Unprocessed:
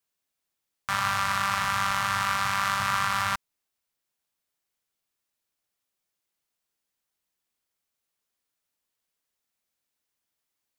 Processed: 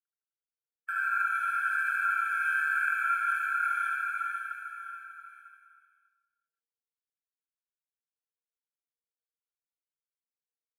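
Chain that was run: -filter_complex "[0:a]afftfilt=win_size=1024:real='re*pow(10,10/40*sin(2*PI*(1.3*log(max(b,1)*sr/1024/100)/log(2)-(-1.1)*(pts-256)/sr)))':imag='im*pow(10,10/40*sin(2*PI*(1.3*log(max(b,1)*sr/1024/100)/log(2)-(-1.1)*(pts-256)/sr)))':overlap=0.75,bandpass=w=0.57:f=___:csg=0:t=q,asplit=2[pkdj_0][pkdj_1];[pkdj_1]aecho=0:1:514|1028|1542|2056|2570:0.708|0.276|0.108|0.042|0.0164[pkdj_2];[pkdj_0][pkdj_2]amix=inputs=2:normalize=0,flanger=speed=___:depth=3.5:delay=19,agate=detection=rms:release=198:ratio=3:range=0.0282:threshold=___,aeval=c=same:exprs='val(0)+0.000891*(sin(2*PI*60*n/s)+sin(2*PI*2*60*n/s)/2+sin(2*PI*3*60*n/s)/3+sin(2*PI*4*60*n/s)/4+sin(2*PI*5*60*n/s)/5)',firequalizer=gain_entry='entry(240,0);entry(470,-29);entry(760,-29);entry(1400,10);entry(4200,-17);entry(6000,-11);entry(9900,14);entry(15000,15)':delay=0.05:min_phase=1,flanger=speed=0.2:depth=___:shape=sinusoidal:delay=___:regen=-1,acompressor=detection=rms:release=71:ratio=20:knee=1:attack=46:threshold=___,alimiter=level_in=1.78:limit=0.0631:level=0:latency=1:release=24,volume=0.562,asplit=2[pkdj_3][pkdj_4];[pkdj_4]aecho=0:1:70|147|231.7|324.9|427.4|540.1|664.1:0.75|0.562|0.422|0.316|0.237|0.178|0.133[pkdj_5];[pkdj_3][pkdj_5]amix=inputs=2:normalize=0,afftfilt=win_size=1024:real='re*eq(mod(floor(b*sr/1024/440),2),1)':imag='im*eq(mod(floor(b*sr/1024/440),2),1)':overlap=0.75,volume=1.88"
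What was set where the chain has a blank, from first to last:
700, 2.4, 0.00126, 7, 5.1, 0.0224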